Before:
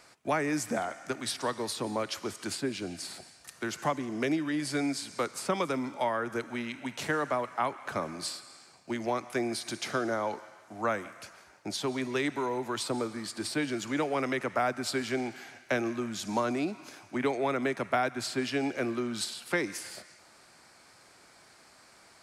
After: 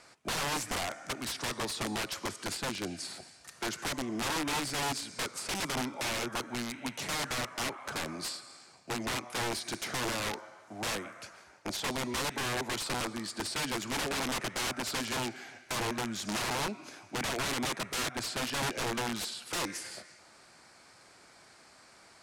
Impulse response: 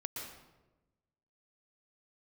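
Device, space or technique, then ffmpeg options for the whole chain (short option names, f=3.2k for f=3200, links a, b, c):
overflowing digital effects unit: -af "aeval=exprs='(mod(23.7*val(0)+1,2)-1)/23.7':c=same,lowpass=11k"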